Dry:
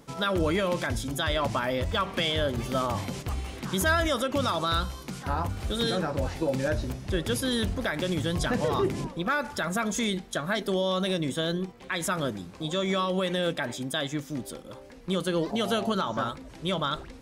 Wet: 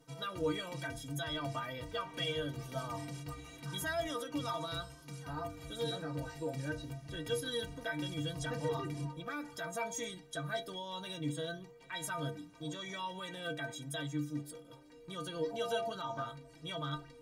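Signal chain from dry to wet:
stiff-string resonator 140 Hz, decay 0.34 s, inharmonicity 0.03
level +1.5 dB

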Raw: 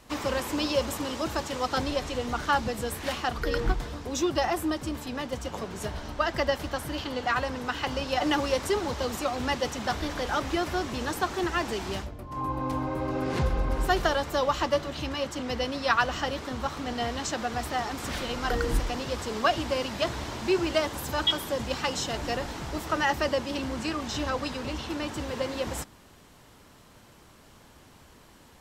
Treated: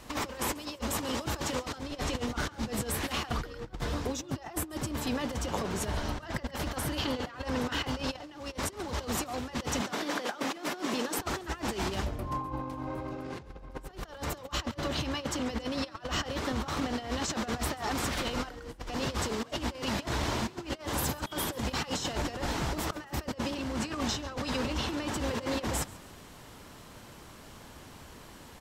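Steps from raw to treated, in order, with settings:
0:09.81–0:11.19: high-pass filter 200 Hz 24 dB per octave
compressor whose output falls as the input rises −34 dBFS, ratio −0.5
on a send: echo with shifted repeats 138 ms, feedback 39%, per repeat +34 Hz, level −21 dB

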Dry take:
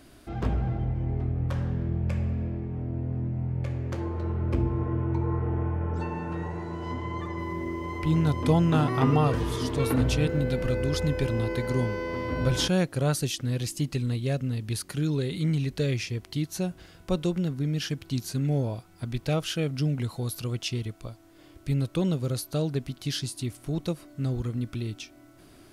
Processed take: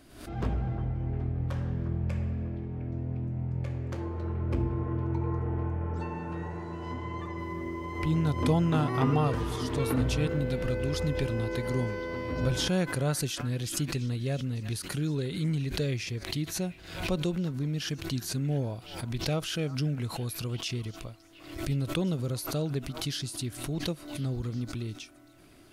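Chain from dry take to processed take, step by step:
echo through a band-pass that steps 354 ms, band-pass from 1,200 Hz, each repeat 0.7 octaves, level −11 dB
background raised ahead of every attack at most 81 dB per second
level −3.5 dB

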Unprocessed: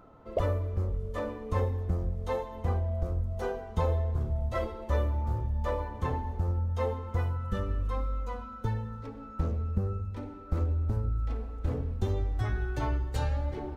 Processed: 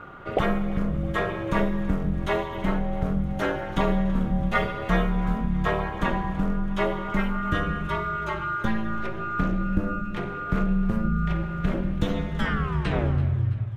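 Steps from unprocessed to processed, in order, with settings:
turntable brake at the end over 1.40 s
flat-topped bell 2,100 Hz +9.5 dB
mains-hum notches 50/100 Hz
in parallel at +1.5 dB: downward compressor, threshold −37 dBFS, peak gain reduction 14 dB
on the sum: ring modulation 110 Hz
feedback echo with a high-pass in the loop 331 ms, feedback 61%, high-pass 440 Hz, level −18 dB
four-comb reverb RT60 2.3 s, combs from 32 ms, DRR 15 dB
level +5.5 dB

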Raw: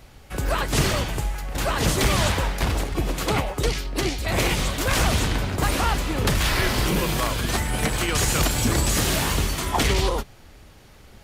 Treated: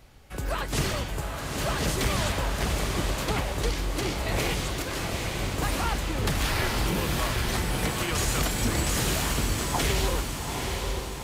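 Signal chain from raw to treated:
0:04.82–0:05.39: tuned comb filter 170 Hz, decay 0.17 s, harmonics all, mix 70%
on a send: feedback delay with all-pass diffusion 836 ms, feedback 47%, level −3.5 dB
on the sum: level −6 dB

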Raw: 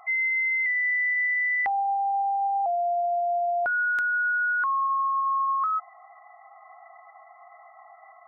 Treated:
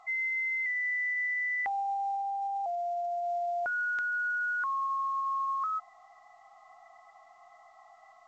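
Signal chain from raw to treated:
0:02.14–0:03.23: high-shelf EQ 2,100 Hz → 2,100 Hz −11 dB
level −6.5 dB
A-law companding 128 kbit/s 16,000 Hz

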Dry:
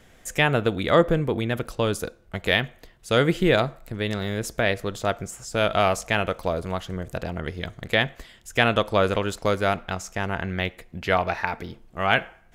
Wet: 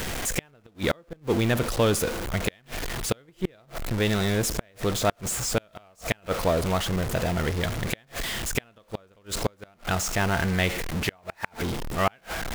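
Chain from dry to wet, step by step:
converter with a step at zero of −25.5 dBFS
gate with flip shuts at −10 dBFS, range −36 dB

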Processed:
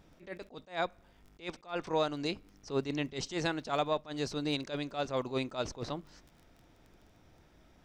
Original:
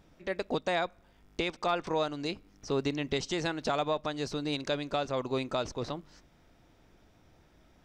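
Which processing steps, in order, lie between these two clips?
surface crackle 14 per second −46 dBFS
level that may rise only so fast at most 220 dB per second

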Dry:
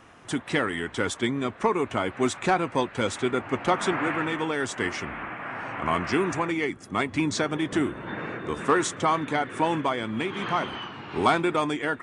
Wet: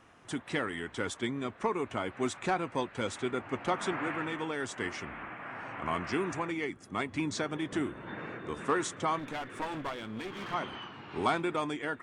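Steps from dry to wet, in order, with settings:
0:09.19–0:10.54: asymmetric clip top −34 dBFS
level −7.5 dB

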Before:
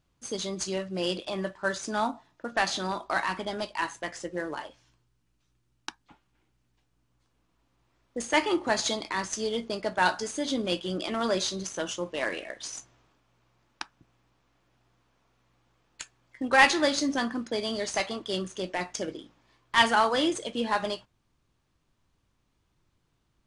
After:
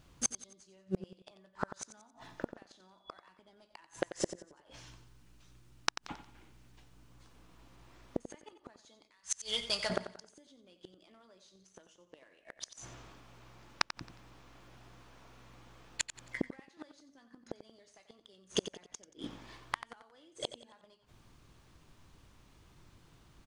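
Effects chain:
0:02.69–0:03.26: steady tone 3,400 Hz −48 dBFS
downward compressor 10 to 1, threshold −30 dBFS, peak gain reduction 17 dB
0:09.07–0:09.90: guitar amp tone stack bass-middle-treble 10-0-10
gate with flip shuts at −28 dBFS, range −39 dB
repeating echo 90 ms, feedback 37%, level −12 dB
level +11.5 dB

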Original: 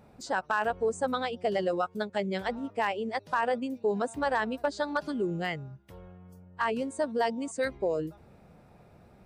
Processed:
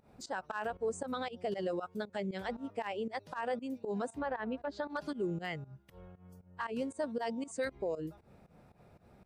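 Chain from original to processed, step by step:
fake sidechain pumping 117 BPM, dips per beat 2, −18 dB, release 141 ms
brickwall limiter −23.5 dBFS, peak gain reduction 6 dB
0:04.09–0:04.90: treble cut that deepens with the level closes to 2,300 Hz, closed at −30.5 dBFS
level −3.5 dB

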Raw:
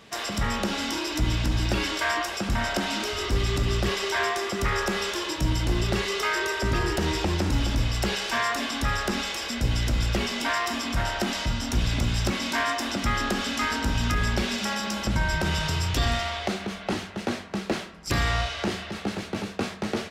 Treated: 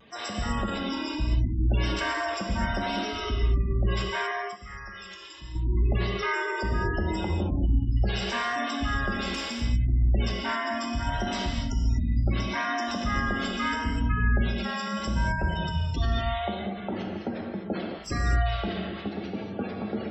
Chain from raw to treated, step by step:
gate on every frequency bin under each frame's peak −15 dB strong
0:04.31–0:05.55: guitar amp tone stack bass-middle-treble 5-5-5
reverb whose tail is shaped and stops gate 270 ms flat, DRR 0 dB
pitch vibrato 0.73 Hz 31 cents
level −4 dB

